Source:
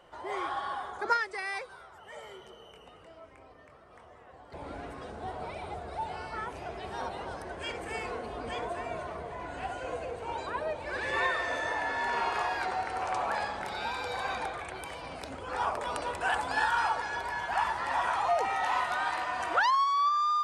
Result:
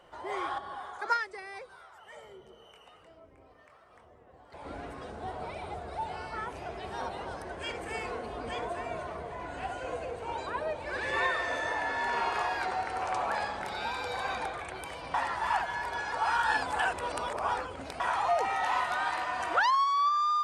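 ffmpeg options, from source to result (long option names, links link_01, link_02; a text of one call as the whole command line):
ffmpeg -i in.wav -filter_complex "[0:a]asettb=1/sr,asplit=3[link_01][link_02][link_03];[link_01]atrim=end=0.584[link_04];[link_02]atrim=start=0.58:end=4.65,asetpts=PTS-STARTPTS,afade=type=in:duration=0.004:curve=qsin,afade=type=out:start_time=4.066:duration=0.004:curve=qsin,acrossover=split=600[link_05][link_06];[link_05]aeval=exprs='val(0)*(1-0.7/2+0.7/2*cos(2*PI*1.1*n/s))':channel_layout=same[link_07];[link_06]aeval=exprs='val(0)*(1-0.7/2-0.7/2*cos(2*PI*1.1*n/s))':channel_layout=same[link_08];[link_07][link_08]amix=inputs=2:normalize=0[link_09];[link_03]atrim=start=4.646[link_10];[link_04][link_09]acrossfade=duration=0.004:curve1=hsin:curve2=qsin[link_11];[link_11][link_10]acrossfade=duration=0.004:curve1=qsin:curve2=hsin,asplit=3[link_12][link_13][link_14];[link_12]atrim=end=15.142[link_15];[link_13]atrim=start=15.138:end=18.002,asetpts=PTS-STARTPTS,areverse[link_16];[link_14]atrim=start=17.998[link_17];[link_15][link_16]acrossfade=duration=0.004:curve1=hsin:curve2=hsin[link_18];[link_18][link_17]acrossfade=duration=0.004:curve1=hsin:curve2=hsin" out.wav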